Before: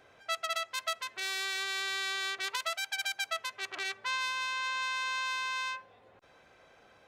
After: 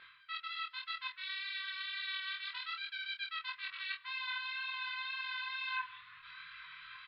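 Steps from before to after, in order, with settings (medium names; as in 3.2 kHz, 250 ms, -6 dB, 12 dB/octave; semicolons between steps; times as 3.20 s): FFT band-reject 170–960 Hz; wow and flutter 19 cents; tilt shelf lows -10 dB, about 770 Hz; reverse; compression 10:1, threshold -42 dBFS, peak gain reduction 22 dB; reverse; elliptic low-pass 4.1 kHz, stop band 60 dB; hard clipper -33 dBFS, distortion -39 dB; chorus voices 6, 0.96 Hz, delay 21 ms, depth 3.5 ms; doubling 26 ms -4.5 dB; echo from a far wall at 25 m, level -23 dB; trim +8.5 dB; MP3 48 kbps 12 kHz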